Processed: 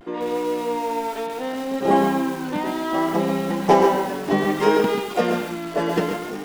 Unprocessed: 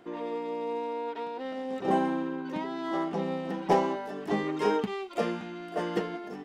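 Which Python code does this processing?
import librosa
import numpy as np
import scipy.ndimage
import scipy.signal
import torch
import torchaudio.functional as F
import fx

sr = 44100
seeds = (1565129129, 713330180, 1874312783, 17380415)

y = x + 10.0 ** (-10.0 / 20.0) * np.pad(x, (int(108 * sr / 1000.0), 0))[:len(x)]
y = fx.vibrato(y, sr, rate_hz=0.65, depth_cents=58.0)
y = fx.echo_crushed(y, sr, ms=135, feedback_pct=35, bits=7, wet_db=-6)
y = y * librosa.db_to_amplitude(8.5)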